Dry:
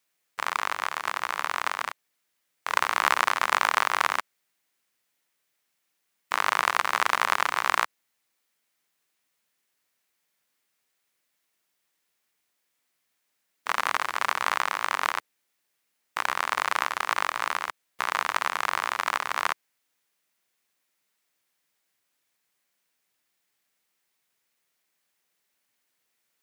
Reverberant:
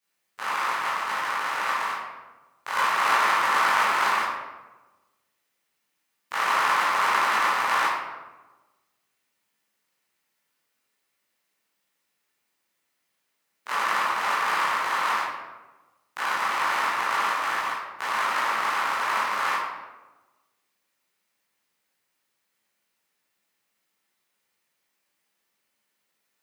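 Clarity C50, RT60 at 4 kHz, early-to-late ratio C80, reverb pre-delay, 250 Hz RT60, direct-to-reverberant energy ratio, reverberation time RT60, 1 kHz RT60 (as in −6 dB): −1.0 dB, 0.70 s, 3.0 dB, 13 ms, 1.3 s, −11.0 dB, 1.2 s, 1.1 s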